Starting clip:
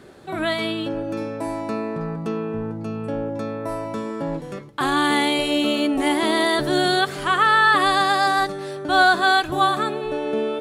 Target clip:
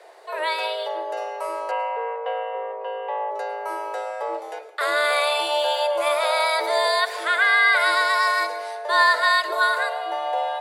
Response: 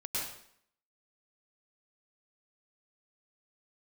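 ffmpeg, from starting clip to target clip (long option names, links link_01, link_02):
-filter_complex "[0:a]asettb=1/sr,asplit=3[link_01][link_02][link_03];[link_01]atrim=end=1.714[link_04];[link_02]atrim=start=1.71:end=3.31,asetpts=PTS-STARTPTS,afade=type=in:duration=0.004:curve=qsin,afade=type=out:start_time=1.596:duration=0.004:curve=qsin,highpass=170,equalizer=frequency=180:width_type=q:width=4:gain=7,equalizer=frequency=340:width_type=q:width=4:gain=-5,equalizer=frequency=690:width_type=q:width=4:gain=9,equalizer=frequency=1100:width_type=q:width=4:gain=-6,equalizer=frequency=1700:width_type=q:width=4:gain=3,equalizer=frequency=2500:width_type=q:width=4:gain=6,lowpass=frequency=2900:width=0.5412,lowpass=frequency=2900:width=1.3066[link_05];[link_03]atrim=start=3.306[link_06];[link_04][link_05]acrossfade=duration=0.004:curve1=hsin:curve2=qsin[link_07];[link_07][link_06]acrossfade=duration=0.004:curve1=qsin:curve2=hsin,afreqshift=300,asplit=2[link_08][link_09];[1:a]atrim=start_sample=2205[link_10];[link_09][link_10]afir=irnorm=-1:irlink=0,volume=-16dB[link_11];[link_08][link_11]amix=inputs=2:normalize=0,volume=-2.5dB"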